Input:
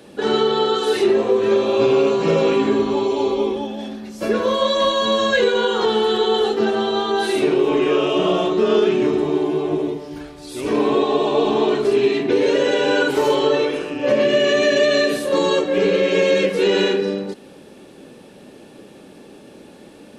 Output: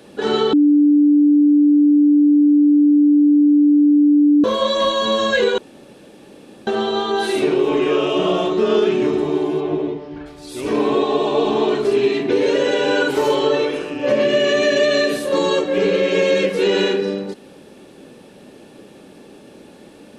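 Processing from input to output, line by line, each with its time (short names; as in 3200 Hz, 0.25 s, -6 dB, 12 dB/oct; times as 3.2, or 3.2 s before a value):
0.53–4.44 bleep 293 Hz -9 dBFS
5.58–6.67 room tone
9.6–10.25 LPF 4700 Hz -> 2400 Hz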